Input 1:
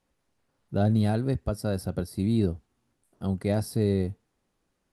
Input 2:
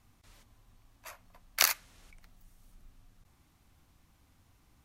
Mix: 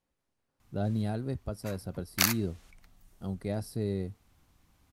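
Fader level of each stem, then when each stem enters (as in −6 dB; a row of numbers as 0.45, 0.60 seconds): −7.5, −0.5 decibels; 0.00, 0.60 seconds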